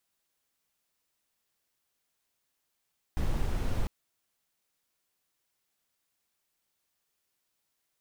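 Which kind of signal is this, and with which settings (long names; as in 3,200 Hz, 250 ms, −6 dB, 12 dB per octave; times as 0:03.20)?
noise brown, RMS −28 dBFS 0.70 s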